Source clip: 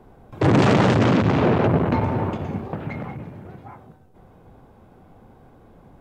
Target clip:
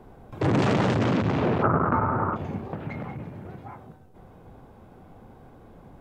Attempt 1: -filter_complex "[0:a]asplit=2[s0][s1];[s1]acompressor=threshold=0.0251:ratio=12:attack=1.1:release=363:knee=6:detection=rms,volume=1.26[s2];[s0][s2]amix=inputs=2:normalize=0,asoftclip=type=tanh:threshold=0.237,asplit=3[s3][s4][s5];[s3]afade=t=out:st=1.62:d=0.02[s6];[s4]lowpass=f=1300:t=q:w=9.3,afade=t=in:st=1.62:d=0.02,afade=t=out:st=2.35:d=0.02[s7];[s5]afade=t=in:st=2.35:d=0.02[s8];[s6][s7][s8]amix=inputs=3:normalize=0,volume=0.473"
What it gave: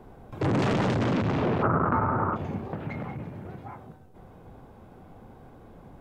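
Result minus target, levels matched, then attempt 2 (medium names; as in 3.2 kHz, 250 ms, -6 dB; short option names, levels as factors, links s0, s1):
saturation: distortion +17 dB
-filter_complex "[0:a]asplit=2[s0][s1];[s1]acompressor=threshold=0.0251:ratio=12:attack=1.1:release=363:knee=6:detection=rms,volume=1.26[s2];[s0][s2]amix=inputs=2:normalize=0,asoftclip=type=tanh:threshold=0.841,asplit=3[s3][s4][s5];[s3]afade=t=out:st=1.62:d=0.02[s6];[s4]lowpass=f=1300:t=q:w=9.3,afade=t=in:st=1.62:d=0.02,afade=t=out:st=2.35:d=0.02[s7];[s5]afade=t=in:st=2.35:d=0.02[s8];[s6][s7][s8]amix=inputs=3:normalize=0,volume=0.473"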